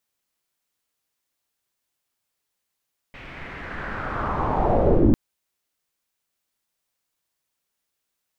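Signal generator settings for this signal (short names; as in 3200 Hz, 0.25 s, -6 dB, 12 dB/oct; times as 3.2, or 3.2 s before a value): swept filtered noise pink, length 2.00 s lowpass, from 2400 Hz, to 240 Hz, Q 3.1, linear, gain ramp +28.5 dB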